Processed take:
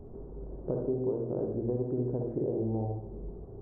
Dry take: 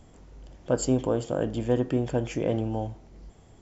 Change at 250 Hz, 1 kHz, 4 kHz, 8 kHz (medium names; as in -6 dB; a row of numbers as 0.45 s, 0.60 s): -5.5 dB, -9.5 dB, under -40 dB, no reading